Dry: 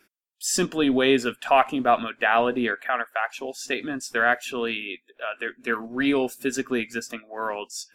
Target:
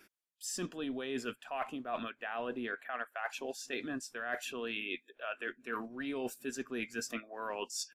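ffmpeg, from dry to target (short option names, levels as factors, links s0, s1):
-af "aresample=32000,aresample=44100,areverse,acompressor=threshold=0.0178:ratio=12,areverse"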